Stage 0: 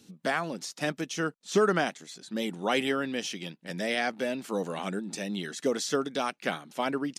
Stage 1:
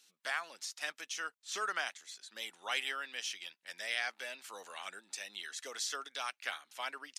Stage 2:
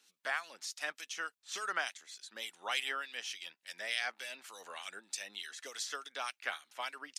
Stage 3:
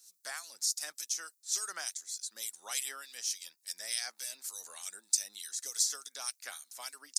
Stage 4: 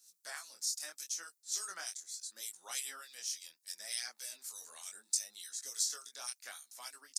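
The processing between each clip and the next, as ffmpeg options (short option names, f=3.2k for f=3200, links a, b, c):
-af "highpass=1.3k,volume=-3.5dB"
-filter_complex "[0:a]acrossover=split=2300[a][b];[a]aeval=exprs='val(0)*(1-0.7/2+0.7/2*cos(2*PI*3.4*n/s))':c=same[c];[b]aeval=exprs='val(0)*(1-0.7/2-0.7/2*cos(2*PI*3.4*n/s))':c=same[d];[c][d]amix=inputs=2:normalize=0,volume=3.5dB"
-af "aexciter=amount=12:drive=3.8:freq=4.4k,volume=-8dB"
-af "flanger=delay=17:depth=7.8:speed=0.73,volume=-1dB"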